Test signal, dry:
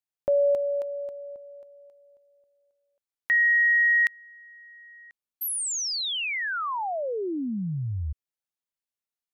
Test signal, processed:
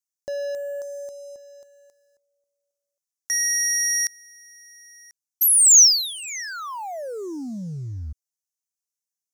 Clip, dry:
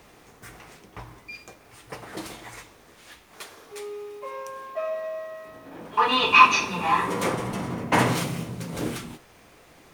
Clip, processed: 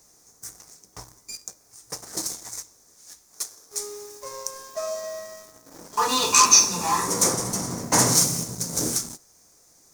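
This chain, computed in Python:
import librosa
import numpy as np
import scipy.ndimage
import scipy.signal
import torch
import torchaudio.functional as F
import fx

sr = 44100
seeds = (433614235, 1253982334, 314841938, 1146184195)

y = fx.leveller(x, sr, passes=2)
y = fx.high_shelf_res(y, sr, hz=4200.0, db=13.5, q=3.0)
y = y * librosa.db_to_amplitude(-8.0)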